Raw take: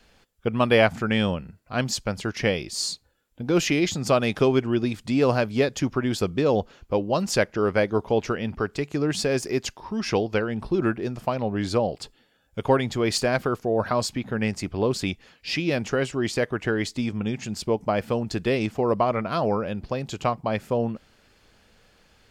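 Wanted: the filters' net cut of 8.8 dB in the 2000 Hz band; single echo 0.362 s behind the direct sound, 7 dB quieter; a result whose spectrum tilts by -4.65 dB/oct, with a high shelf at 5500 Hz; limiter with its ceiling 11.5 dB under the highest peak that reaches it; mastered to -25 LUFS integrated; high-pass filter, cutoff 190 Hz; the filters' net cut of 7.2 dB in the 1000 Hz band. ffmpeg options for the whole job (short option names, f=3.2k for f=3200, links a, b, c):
-af "highpass=190,equalizer=f=1k:t=o:g=-8,equalizer=f=2k:t=o:g=-8.5,highshelf=f=5.5k:g=-3.5,alimiter=limit=-20.5dB:level=0:latency=1,aecho=1:1:362:0.447,volume=6dB"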